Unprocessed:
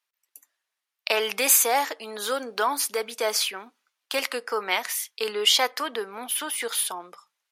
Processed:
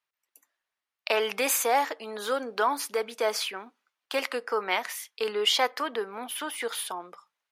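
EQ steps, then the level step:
high-shelf EQ 3,500 Hz −10 dB
0.0 dB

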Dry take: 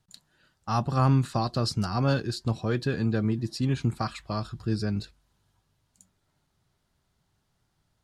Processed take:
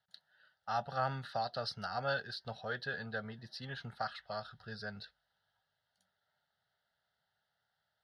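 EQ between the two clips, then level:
resonant band-pass 1,600 Hz, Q 0.67
phaser with its sweep stopped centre 1,600 Hz, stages 8
0.0 dB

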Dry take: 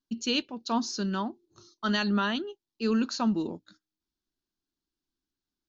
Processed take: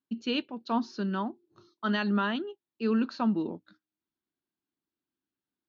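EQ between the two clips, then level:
band-pass filter 120–3,400 Hz
high-frequency loss of the air 110 metres
0.0 dB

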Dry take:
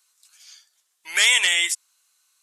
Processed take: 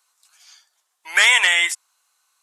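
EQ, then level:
high-pass filter 160 Hz
dynamic equaliser 1,600 Hz, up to +6 dB, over −31 dBFS, Q 1.2
parametric band 850 Hz +11.5 dB 1.7 octaves
−2.5 dB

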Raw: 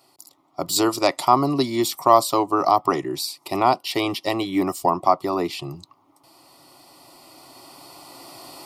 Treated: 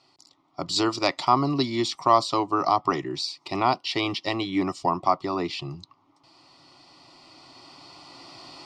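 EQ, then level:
low-pass filter 5,800 Hz 24 dB per octave
parametric band 550 Hz −6.5 dB 1.8 octaves
0.0 dB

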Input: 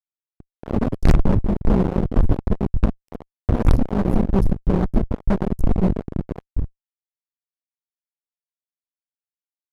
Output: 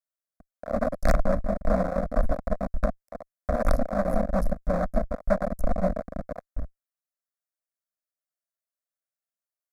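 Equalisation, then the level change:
low shelf with overshoot 480 Hz −7.5 dB, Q 3
phaser with its sweep stopped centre 590 Hz, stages 8
+1.5 dB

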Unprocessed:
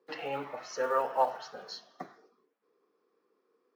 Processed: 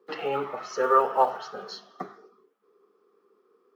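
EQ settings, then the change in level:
thirty-one-band graphic EQ 125 Hz +4 dB, 200 Hz +9 dB, 400 Hz +12 dB, 800 Hz +3 dB, 1,250 Hz +11 dB, 3,150 Hz +4 dB
+2.0 dB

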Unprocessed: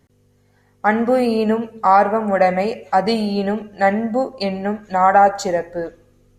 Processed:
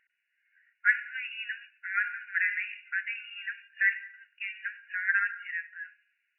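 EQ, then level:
linear-phase brick-wall high-pass 1,400 Hz
linear-phase brick-wall low-pass 2,900 Hz
0.0 dB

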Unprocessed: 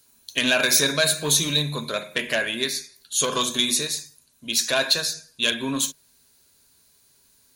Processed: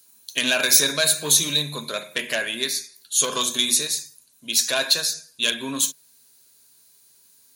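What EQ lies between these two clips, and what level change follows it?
high-pass filter 160 Hz 6 dB per octave
high-shelf EQ 4,800 Hz +7.5 dB
−2.0 dB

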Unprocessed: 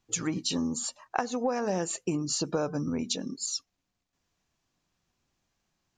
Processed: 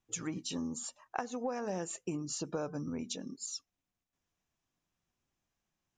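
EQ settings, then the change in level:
parametric band 4,400 Hz −7.5 dB 0.23 octaves
−7.5 dB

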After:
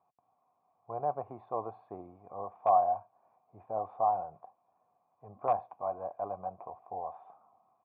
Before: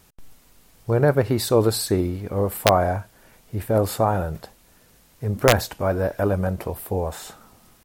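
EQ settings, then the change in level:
formant resonators in series a
high-pass filter 100 Hz 24 dB per octave
0.0 dB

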